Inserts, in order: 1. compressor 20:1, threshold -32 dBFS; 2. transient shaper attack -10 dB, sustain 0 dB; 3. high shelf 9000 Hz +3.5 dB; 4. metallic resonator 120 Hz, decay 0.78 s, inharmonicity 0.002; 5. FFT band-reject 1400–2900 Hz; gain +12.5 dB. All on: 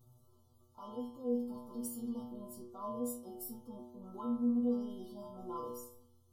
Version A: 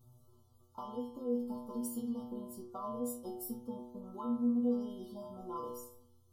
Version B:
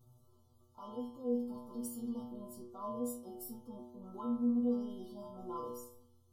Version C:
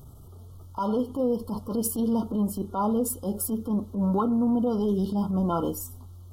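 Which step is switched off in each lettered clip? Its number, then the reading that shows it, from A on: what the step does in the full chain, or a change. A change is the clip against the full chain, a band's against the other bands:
2, momentary loudness spread change -2 LU; 3, 8 kHz band -2.0 dB; 4, 125 Hz band +10.0 dB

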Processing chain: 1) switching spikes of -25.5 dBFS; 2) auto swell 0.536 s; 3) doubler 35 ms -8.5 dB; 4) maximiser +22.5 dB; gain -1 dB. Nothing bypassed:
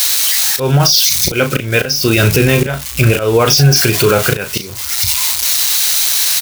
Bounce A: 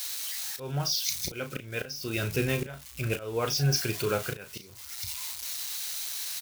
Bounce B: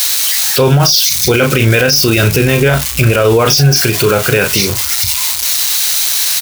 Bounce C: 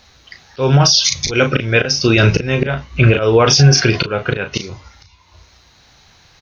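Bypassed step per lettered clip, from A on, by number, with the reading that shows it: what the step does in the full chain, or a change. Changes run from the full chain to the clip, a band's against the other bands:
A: 4, crest factor change +8.0 dB; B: 2, crest factor change -1.5 dB; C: 1, distortion -10 dB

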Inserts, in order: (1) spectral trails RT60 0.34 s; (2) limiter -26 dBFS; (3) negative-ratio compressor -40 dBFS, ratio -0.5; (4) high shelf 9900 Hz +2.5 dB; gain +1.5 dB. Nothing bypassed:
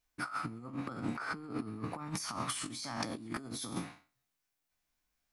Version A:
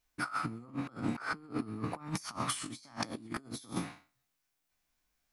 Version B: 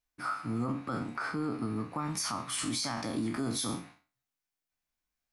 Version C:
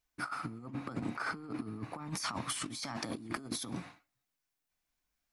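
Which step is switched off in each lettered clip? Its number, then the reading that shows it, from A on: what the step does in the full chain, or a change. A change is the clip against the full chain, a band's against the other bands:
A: 2, mean gain reduction 2.5 dB; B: 3, crest factor change -9.5 dB; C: 1, 4 kHz band +1.5 dB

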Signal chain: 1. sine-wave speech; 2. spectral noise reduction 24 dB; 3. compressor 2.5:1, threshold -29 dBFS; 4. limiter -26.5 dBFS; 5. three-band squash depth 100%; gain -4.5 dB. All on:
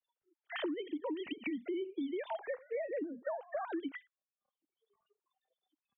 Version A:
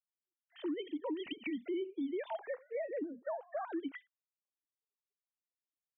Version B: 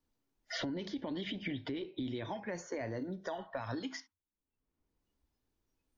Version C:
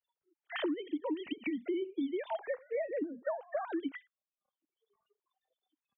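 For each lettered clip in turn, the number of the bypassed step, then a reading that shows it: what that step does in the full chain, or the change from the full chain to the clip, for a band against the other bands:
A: 5, crest factor change -3.0 dB; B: 1, 500 Hz band -3.5 dB; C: 4, loudness change +2.5 LU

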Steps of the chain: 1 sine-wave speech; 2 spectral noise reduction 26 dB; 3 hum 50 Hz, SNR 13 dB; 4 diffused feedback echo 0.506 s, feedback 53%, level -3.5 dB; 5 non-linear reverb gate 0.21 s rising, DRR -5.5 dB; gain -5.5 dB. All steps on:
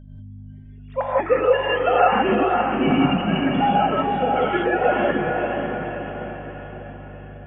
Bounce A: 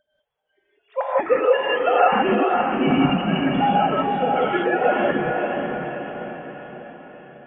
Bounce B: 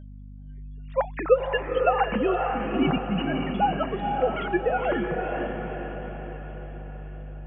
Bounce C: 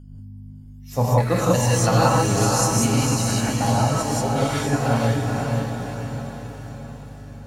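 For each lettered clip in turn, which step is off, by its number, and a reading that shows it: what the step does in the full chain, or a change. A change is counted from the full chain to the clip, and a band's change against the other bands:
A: 3, momentary loudness spread change -2 LU; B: 5, echo-to-direct 8.0 dB to -2.0 dB; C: 1, 125 Hz band +14.5 dB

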